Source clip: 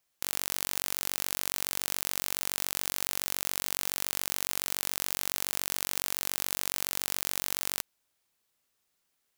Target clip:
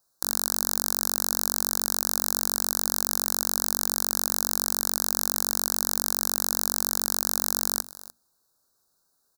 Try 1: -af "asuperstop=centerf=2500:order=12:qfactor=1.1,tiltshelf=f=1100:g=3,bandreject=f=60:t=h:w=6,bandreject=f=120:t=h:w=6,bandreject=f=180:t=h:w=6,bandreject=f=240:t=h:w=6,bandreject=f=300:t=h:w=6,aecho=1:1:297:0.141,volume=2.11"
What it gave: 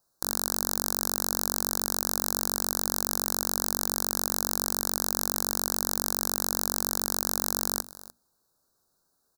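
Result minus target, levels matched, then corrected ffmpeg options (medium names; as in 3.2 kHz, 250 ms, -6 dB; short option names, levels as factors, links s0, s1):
1 kHz band +3.0 dB
-af "asuperstop=centerf=2500:order=12:qfactor=1.1,bandreject=f=60:t=h:w=6,bandreject=f=120:t=h:w=6,bandreject=f=180:t=h:w=6,bandreject=f=240:t=h:w=6,bandreject=f=300:t=h:w=6,aecho=1:1:297:0.141,volume=2.11"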